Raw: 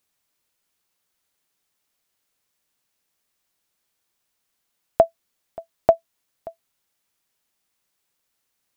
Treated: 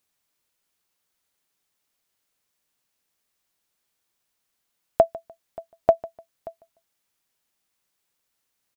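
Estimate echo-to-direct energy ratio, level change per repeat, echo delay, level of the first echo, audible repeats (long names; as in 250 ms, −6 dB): −19.5 dB, −11.5 dB, 149 ms, −20.0 dB, 2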